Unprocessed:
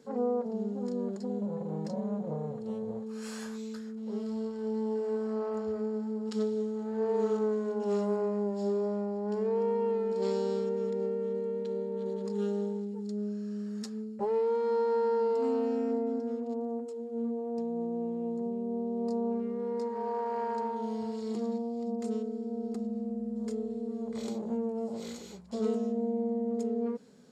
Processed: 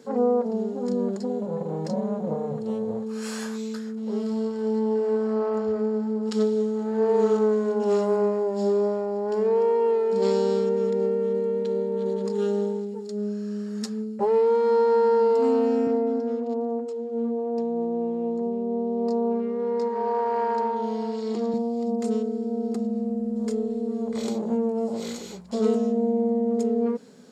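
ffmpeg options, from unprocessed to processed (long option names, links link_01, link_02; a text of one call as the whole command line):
ffmpeg -i in.wav -filter_complex "[0:a]asettb=1/sr,asplit=3[link_01][link_02][link_03];[link_01]atrim=end=4.794[link_04];[link_02]atrim=start=4.79:end=6.23,asetpts=PTS-STARTPTS,afade=type=in:duration=0.004:curve=qsin,afade=type=out:start_time=1.436:duration=0.004:curve=qsin,highshelf=frequency=7000:gain=-9[link_05];[link_03]atrim=start=6.226[link_06];[link_04][link_05]acrossfade=duration=0.004:curve1=hsin:curve2=qsin[link_07];[link_07][link_06]acrossfade=duration=0.004:curve1=qsin:curve2=hsin,asettb=1/sr,asplit=3[link_08][link_09][link_10];[link_08]atrim=end=15.874[link_11];[link_09]atrim=start=15.87:end=21.54,asetpts=PTS-STARTPTS,afade=type=in:duration=0.004:curve=qsin,afade=type=out:start_time=5.666:duration=0.004:curve=qsin,highpass=210,lowpass=6000[link_12];[link_10]atrim=start=21.536[link_13];[link_11][link_12]acrossfade=duration=0.004:curve1=hsin:curve2=qsin[link_14];[link_14][link_13]acrossfade=duration=0.004:curve1=qsin:curve2=hsin,lowshelf=frequency=64:gain=-10.5,bandreject=frequency=51.18:width_type=h:width=4,bandreject=frequency=102.36:width_type=h:width=4,bandreject=frequency=153.54:width_type=h:width=4,bandreject=frequency=204.72:width_type=h:width=4,volume=8.5dB" out.wav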